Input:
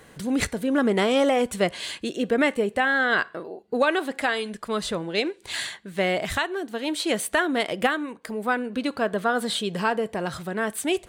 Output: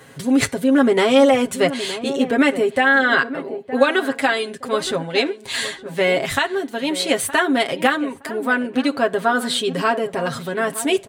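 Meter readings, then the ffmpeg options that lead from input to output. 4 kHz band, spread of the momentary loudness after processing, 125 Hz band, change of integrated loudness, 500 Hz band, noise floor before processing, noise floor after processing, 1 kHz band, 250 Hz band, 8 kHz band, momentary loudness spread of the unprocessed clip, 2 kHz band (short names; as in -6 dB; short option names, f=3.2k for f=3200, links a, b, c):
+6.0 dB, 9 LU, +3.0 dB, +6.0 dB, +6.0 dB, -52 dBFS, -41 dBFS, +5.5 dB, +6.5 dB, +5.5 dB, 9 LU, +6.0 dB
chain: -filter_complex "[0:a]highpass=66,aecho=1:1:7.4:0.81,asplit=2[a][b];[b]adelay=917,lowpass=f=1.1k:p=1,volume=-12dB,asplit=2[c][d];[d]adelay=917,lowpass=f=1.1k:p=1,volume=0.27,asplit=2[e][f];[f]adelay=917,lowpass=f=1.1k:p=1,volume=0.27[g];[a][c][e][g]amix=inputs=4:normalize=0,volume=3.5dB"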